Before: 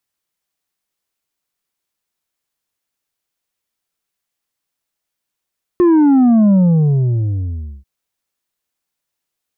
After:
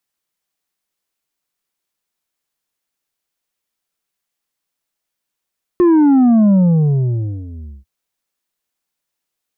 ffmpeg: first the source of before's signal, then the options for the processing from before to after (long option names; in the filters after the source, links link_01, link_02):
-f lavfi -i "aevalsrc='0.398*clip((2.04-t)/1.32,0,1)*tanh(1.78*sin(2*PI*360*2.04/log(65/360)*(exp(log(65/360)*t/2.04)-1)))/tanh(1.78)':duration=2.04:sample_rate=44100"
-af "equalizer=frequency=90:width=3.7:gain=-9.5"